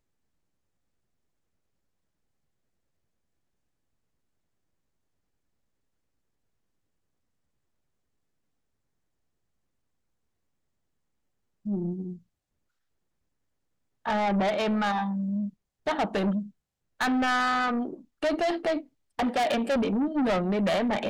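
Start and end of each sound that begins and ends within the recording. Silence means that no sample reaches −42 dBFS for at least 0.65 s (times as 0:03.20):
0:11.66–0:12.17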